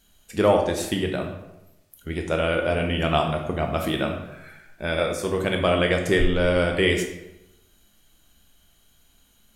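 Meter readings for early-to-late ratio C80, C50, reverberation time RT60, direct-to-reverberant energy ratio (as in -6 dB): 9.0 dB, 6.0 dB, 0.90 s, 2.5 dB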